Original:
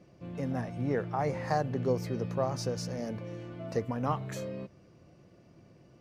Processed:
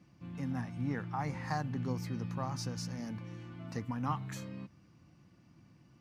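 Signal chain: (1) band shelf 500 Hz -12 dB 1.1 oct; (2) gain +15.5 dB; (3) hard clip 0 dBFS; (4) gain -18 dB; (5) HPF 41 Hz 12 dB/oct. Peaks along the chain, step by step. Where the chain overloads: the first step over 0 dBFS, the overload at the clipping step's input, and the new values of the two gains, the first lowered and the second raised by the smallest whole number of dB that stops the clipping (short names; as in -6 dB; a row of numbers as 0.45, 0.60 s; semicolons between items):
-18.0, -2.5, -2.5, -20.5, -20.0 dBFS; no overload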